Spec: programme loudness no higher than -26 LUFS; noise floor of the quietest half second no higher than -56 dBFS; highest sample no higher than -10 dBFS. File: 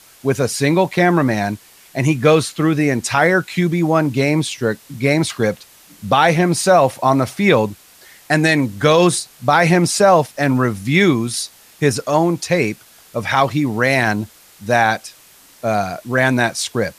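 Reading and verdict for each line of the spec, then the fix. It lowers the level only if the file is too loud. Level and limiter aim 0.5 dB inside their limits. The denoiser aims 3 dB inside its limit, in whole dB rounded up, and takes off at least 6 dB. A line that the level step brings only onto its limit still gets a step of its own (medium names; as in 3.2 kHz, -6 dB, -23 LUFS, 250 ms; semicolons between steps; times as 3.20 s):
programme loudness -16.5 LUFS: fail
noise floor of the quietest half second -47 dBFS: fail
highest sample -2.5 dBFS: fail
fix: trim -10 dB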